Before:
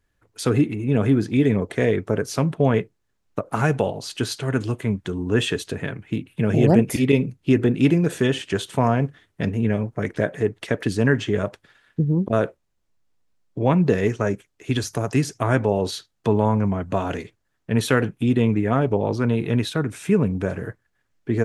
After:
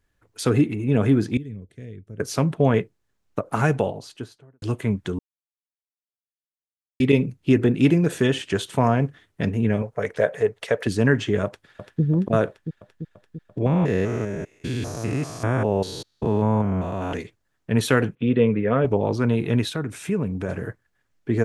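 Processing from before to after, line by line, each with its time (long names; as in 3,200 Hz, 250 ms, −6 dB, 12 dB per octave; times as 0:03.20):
0:01.37–0:02.20: guitar amp tone stack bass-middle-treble 10-0-1
0:03.62–0:04.62: fade out and dull
0:05.19–0:07.00: silence
0:09.82–0:10.87: low shelf with overshoot 390 Hz −6 dB, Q 3
0:11.45–0:12.02: delay throw 340 ms, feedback 70%, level −6 dB
0:13.66–0:17.13: spectrum averaged block by block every 200 ms
0:18.15–0:18.85: loudspeaker in its box 120–3,400 Hz, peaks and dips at 320 Hz −6 dB, 490 Hz +9 dB, 810 Hz −10 dB
0:19.69–0:20.49: downward compressor 1.5 to 1, threshold −29 dBFS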